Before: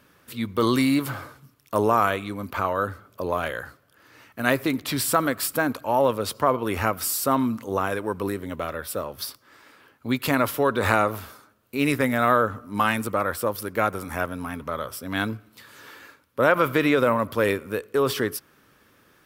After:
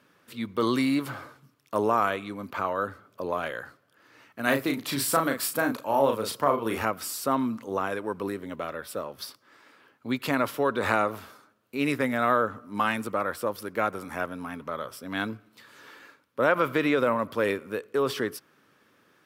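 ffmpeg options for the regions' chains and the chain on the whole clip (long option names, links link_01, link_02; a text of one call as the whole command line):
ffmpeg -i in.wav -filter_complex "[0:a]asettb=1/sr,asplit=3[link_01][link_02][link_03];[link_01]atrim=end=4.434[link_04];[link_02]atrim=start=4.43:end=6.85,asetpts=PTS-STARTPTS,afade=type=in:duration=0.004:curve=qsin,afade=type=out:start_time=2.416:duration=0.004:curve=qsin,highshelf=frequency=8500:gain=8.5,asplit=2[link_05][link_06];[link_06]adelay=36,volume=-5dB[link_07];[link_05][link_07]amix=inputs=2:normalize=0,atrim=end_sample=106722[link_08];[link_03]atrim=start=6.846[link_09];[link_04][link_08]acrossfade=duration=0.004:curve1=hsin:curve2=qsin[link_10];[link_10][link_09]acrossfade=duration=0.004:curve1=qsin:curve2=hsin,highpass=140,highshelf=frequency=9900:gain=-10,volume=-3.5dB" out.wav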